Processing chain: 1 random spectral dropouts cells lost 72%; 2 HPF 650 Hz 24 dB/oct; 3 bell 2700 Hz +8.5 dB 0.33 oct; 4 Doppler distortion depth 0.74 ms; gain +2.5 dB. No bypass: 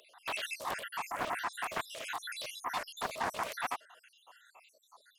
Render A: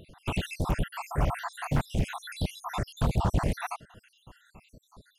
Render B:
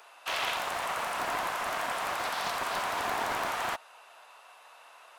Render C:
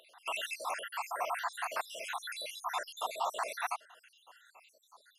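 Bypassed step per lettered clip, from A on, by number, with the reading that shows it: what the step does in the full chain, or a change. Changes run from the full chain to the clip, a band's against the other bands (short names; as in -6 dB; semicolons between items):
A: 2, 125 Hz band +28.5 dB; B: 1, crest factor change -3.0 dB; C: 4, 2 kHz band -1.5 dB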